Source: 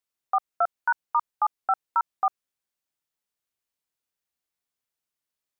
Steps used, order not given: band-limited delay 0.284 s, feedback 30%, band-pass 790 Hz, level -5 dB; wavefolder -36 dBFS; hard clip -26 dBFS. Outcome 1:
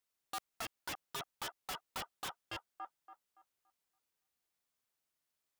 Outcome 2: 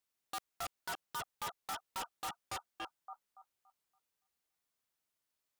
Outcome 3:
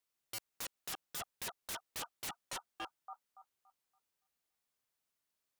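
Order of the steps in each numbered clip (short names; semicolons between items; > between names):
hard clip > band-limited delay > wavefolder; band-limited delay > hard clip > wavefolder; band-limited delay > wavefolder > hard clip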